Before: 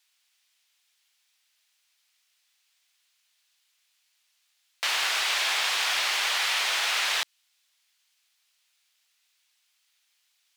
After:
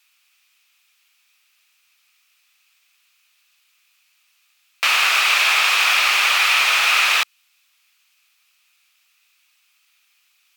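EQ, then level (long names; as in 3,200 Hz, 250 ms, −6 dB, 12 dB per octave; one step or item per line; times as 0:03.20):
thirty-one-band graphic EQ 160 Hz +5 dB, 1,250 Hz +9 dB, 2,500 Hz +10 dB, 16,000 Hz +10 dB
+5.5 dB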